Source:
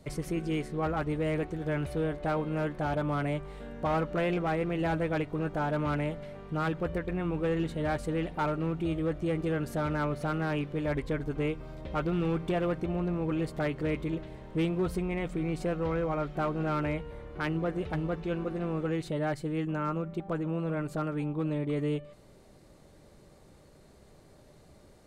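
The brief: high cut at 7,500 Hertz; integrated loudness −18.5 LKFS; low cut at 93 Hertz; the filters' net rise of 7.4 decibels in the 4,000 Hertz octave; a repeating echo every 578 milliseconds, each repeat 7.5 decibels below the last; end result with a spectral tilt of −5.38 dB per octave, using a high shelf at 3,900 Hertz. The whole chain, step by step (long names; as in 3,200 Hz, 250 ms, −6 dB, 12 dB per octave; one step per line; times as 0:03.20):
high-pass filter 93 Hz
low-pass filter 7,500 Hz
high-shelf EQ 3,900 Hz +5 dB
parametric band 4,000 Hz +7.5 dB
repeating echo 578 ms, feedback 42%, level −7.5 dB
level +12.5 dB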